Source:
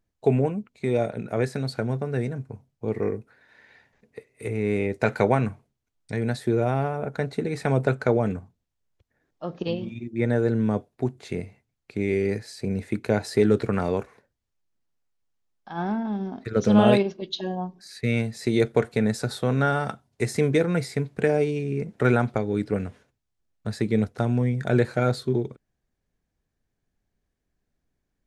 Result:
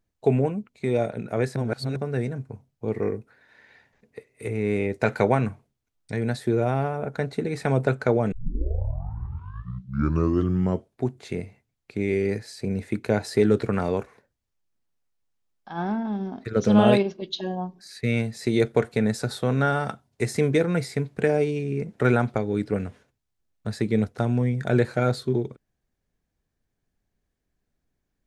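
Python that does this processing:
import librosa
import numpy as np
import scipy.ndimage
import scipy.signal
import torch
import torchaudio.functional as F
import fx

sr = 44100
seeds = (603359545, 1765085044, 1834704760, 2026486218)

y = fx.edit(x, sr, fx.reverse_span(start_s=1.56, length_s=0.4),
    fx.tape_start(start_s=8.32, length_s=2.72), tone=tone)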